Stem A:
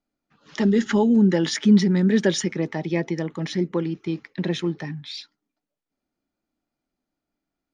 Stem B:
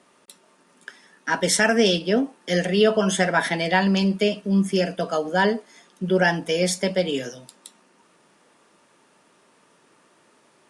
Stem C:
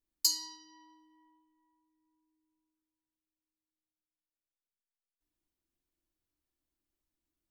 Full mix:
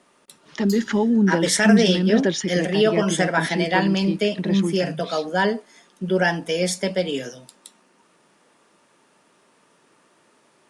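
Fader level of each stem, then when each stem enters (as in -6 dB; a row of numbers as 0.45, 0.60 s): -1.0, -0.5, -8.5 dB; 0.00, 0.00, 0.45 s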